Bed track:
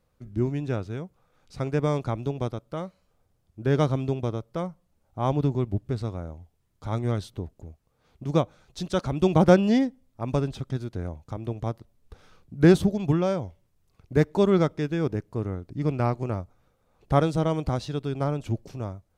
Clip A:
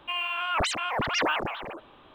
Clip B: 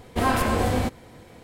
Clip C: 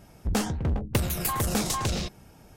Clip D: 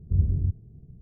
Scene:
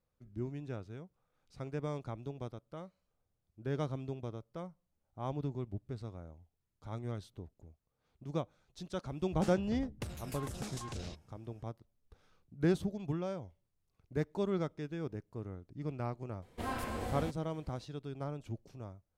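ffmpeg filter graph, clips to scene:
ffmpeg -i bed.wav -i cue0.wav -i cue1.wav -i cue2.wav -filter_complex "[0:a]volume=-13.5dB[link_01];[3:a]lowpass=9600,atrim=end=2.56,asetpts=PTS-STARTPTS,volume=-16.5dB,afade=type=in:duration=0.004:curve=hsin,afade=type=out:start_time=2.556:duration=0.004:curve=hsin,adelay=9070[link_02];[2:a]atrim=end=1.43,asetpts=PTS-STARTPTS,volume=-16dB,afade=type=in:duration=0.004:curve=hsin,afade=type=out:start_time=1.426:duration=0.004:curve=hsin,adelay=16420[link_03];[link_01][link_02][link_03]amix=inputs=3:normalize=0" out.wav

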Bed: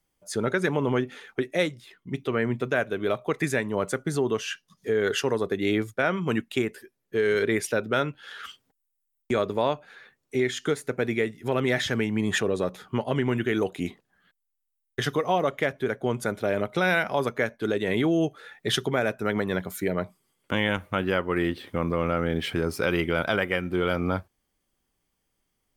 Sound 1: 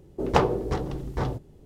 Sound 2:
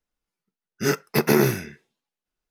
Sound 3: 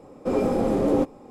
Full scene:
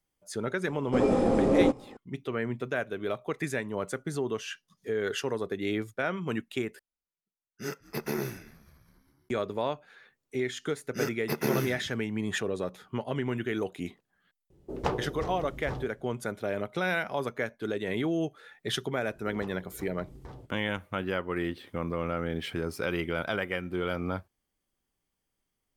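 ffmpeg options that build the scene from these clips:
ffmpeg -i bed.wav -i cue0.wav -i cue1.wav -i cue2.wav -filter_complex "[2:a]asplit=2[link_01][link_02];[1:a]asplit=2[link_03][link_04];[0:a]volume=-6dB[link_05];[3:a]aresample=22050,aresample=44100[link_06];[link_01]asplit=6[link_07][link_08][link_09][link_10][link_11][link_12];[link_08]adelay=198,afreqshift=-100,volume=-22dB[link_13];[link_09]adelay=396,afreqshift=-200,volume=-25.7dB[link_14];[link_10]adelay=594,afreqshift=-300,volume=-29.5dB[link_15];[link_11]adelay=792,afreqshift=-400,volume=-33.2dB[link_16];[link_12]adelay=990,afreqshift=-500,volume=-37dB[link_17];[link_07][link_13][link_14][link_15][link_16][link_17]amix=inputs=6:normalize=0[link_18];[link_04]acompressor=threshold=-31dB:ratio=10:attack=0.19:release=700:knee=1:detection=rms[link_19];[link_05]asplit=2[link_20][link_21];[link_20]atrim=end=6.794[link_22];[link_18]atrim=end=2.5,asetpts=PTS-STARTPTS,volume=-14dB[link_23];[link_21]atrim=start=9.286[link_24];[link_06]atrim=end=1.3,asetpts=PTS-STARTPTS,volume=-1.5dB,afade=type=in:duration=0.004:curve=hsin,afade=type=out:start_time=1.296:duration=0.004:curve=hsin,adelay=670[link_25];[link_02]atrim=end=2.5,asetpts=PTS-STARTPTS,volume=-10.5dB,afade=type=in:duration=0.004:curve=hsin,afade=type=out:start_time=2.496:duration=0.004:curve=hsin,adelay=10140[link_26];[link_03]atrim=end=1.65,asetpts=PTS-STARTPTS,volume=-9dB,afade=type=in:duration=0.004:curve=hsin,afade=type=out:start_time=1.646:duration=0.004:curve=hsin,adelay=14500[link_27];[link_19]atrim=end=1.65,asetpts=PTS-STARTPTS,volume=-6dB,afade=type=in:duration=0.004:curve=hsin,afade=type=out:start_time=1.646:duration=0.004:curve=hsin,adelay=841428S[link_28];[link_22][link_23]acrossfade=duration=0.004:curve1=hsin:curve2=hsin[link_29];[link_29][link_24]acrossfade=duration=0.004:curve1=hsin:curve2=hsin[link_30];[link_30][link_25][link_26][link_27][link_28]amix=inputs=5:normalize=0" out.wav

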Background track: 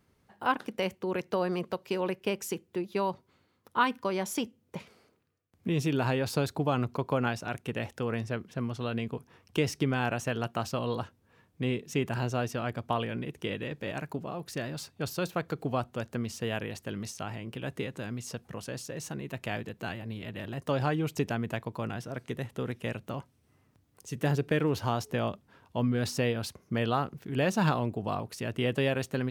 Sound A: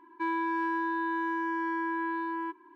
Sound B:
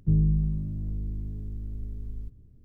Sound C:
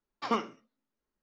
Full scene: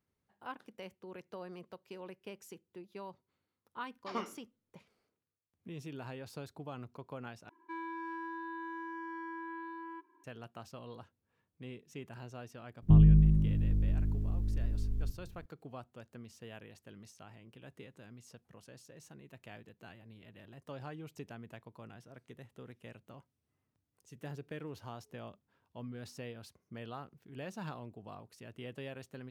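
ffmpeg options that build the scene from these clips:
ffmpeg -i bed.wav -i cue0.wav -i cue1.wav -i cue2.wav -filter_complex "[0:a]volume=-16.5dB[link_01];[2:a]acontrast=88[link_02];[link_01]asplit=2[link_03][link_04];[link_03]atrim=end=7.494[link_05];[1:a]atrim=end=2.75,asetpts=PTS-STARTPTS,volume=-11.5dB[link_06];[link_04]atrim=start=10.236[link_07];[3:a]atrim=end=1.22,asetpts=PTS-STARTPTS,volume=-9dB,afade=type=in:duration=0.004:curve=hsin,afade=type=out:start_time=1.216:duration=0.004:curve=hsin,adelay=3840[link_08];[link_02]atrim=end=2.64,asetpts=PTS-STARTPTS,volume=-5dB,afade=type=in:duration=0.004:curve=hsin,afade=type=out:start_time=2.636:duration=0.004:curve=hsin,adelay=12820[link_09];[link_05][link_06]acrossfade=duration=0.004:curve1=hsin:curve2=hsin[link_10];[link_10][link_07]acrossfade=duration=0.004:curve1=hsin:curve2=hsin[link_11];[link_11][link_08][link_09]amix=inputs=3:normalize=0" out.wav

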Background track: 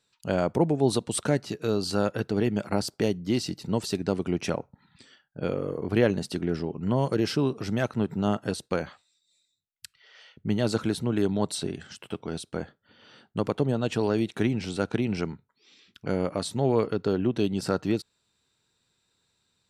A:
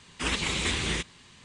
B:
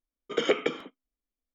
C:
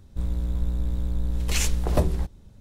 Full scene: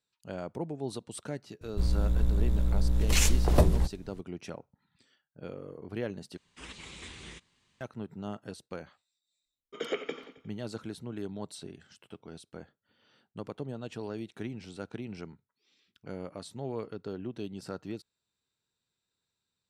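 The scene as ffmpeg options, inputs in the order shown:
ffmpeg -i bed.wav -i cue0.wav -i cue1.wav -i cue2.wav -filter_complex "[0:a]volume=-13dB[link_01];[2:a]aecho=1:1:89|178|267|356|445|534:0.2|0.11|0.0604|0.0332|0.0183|0.01[link_02];[link_01]asplit=2[link_03][link_04];[link_03]atrim=end=6.374[link_05];[1:a]atrim=end=1.44,asetpts=PTS-STARTPTS,volume=-17.5dB[link_06];[link_04]atrim=start=7.806[link_07];[3:a]atrim=end=2.6,asetpts=PTS-STARTPTS,afade=type=in:duration=0.004:curve=hsin,afade=type=out:start_time=2.596:duration=0.004:curve=hsin,adelay=1610[link_08];[link_02]atrim=end=1.54,asetpts=PTS-STARTPTS,volume=-9dB,afade=type=in:duration=0.004:curve=hsin,afade=type=out:start_time=1.536:duration=0.004:curve=hsin,adelay=9430[link_09];[link_05][link_06]acrossfade=duration=0.004:curve1=hsin:curve2=hsin[link_10];[link_10][link_07]acrossfade=duration=0.004:curve1=hsin:curve2=hsin[link_11];[link_11][link_08][link_09]amix=inputs=3:normalize=0" out.wav

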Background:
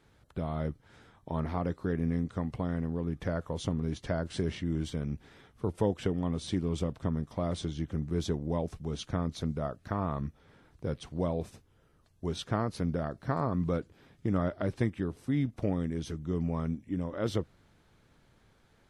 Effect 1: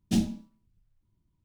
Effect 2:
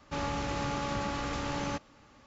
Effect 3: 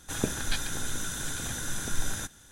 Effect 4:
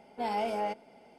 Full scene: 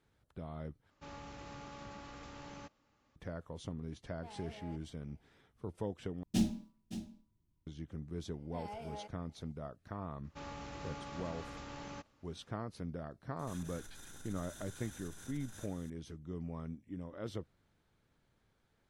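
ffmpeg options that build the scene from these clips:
ffmpeg -i bed.wav -i cue0.wav -i cue1.wav -i cue2.wav -i cue3.wav -filter_complex "[2:a]asplit=2[link_01][link_02];[4:a]asplit=2[link_03][link_04];[0:a]volume=-11dB[link_05];[link_03]asoftclip=type=tanh:threshold=-30dB[link_06];[1:a]aecho=1:1:567:0.237[link_07];[3:a]acompressor=threshold=-40dB:ratio=12:attack=0.42:release=47:knee=1:detection=peak[link_08];[link_05]asplit=3[link_09][link_10][link_11];[link_09]atrim=end=0.904[link_12];[link_01]atrim=end=2.26,asetpts=PTS-STARTPTS,volume=-16dB[link_13];[link_10]atrim=start=3.156:end=6.234[link_14];[link_07]atrim=end=1.44,asetpts=PTS-STARTPTS,volume=-5.5dB[link_15];[link_11]atrim=start=7.666[link_16];[link_06]atrim=end=1.18,asetpts=PTS-STARTPTS,volume=-17.5dB,afade=type=in:duration=0.004:curve=hsin,afade=type=out:start_time=1.176:duration=0.004:curve=hsin,adelay=4030[link_17];[link_04]atrim=end=1.18,asetpts=PTS-STARTPTS,volume=-15dB,afade=type=in:duration=0.004:curve=hsin,afade=type=out:start_time=1.176:duration=0.004:curve=hsin,adelay=367794S[link_18];[link_02]atrim=end=2.26,asetpts=PTS-STARTPTS,volume=-13dB,afade=type=in:duration=0.004:curve=hsin,afade=type=out:start_time=2.256:duration=0.004:curve=hsin,adelay=10240[link_19];[link_08]atrim=end=2.51,asetpts=PTS-STARTPTS,volume=-7dB,afade=type=in:duration=0.004:curve=hsin,afade=type=out:start_time=2.506:duration=0.004:curve=hsin,adelay=13390[link_20];[link_12][link_13]acrossfade=duration=0.004:curve1=hsin:curve2=hsin[link_21];[link_21][link_14]acrossfade=duration=0.004:curve1=hsin:curve2=hsin[link_22];[link_22][link_15]acrossfade=duration=0.004:curve1=hsin:curve2=hsin[link_23];[link_23][link_16]acrossfade=duration=0.004:curve1=hsin:curve2=hsin[link_24];[link_24][link_17][link_18][link_19][link_20]amix=inputs=5:normalize=0" out.wav

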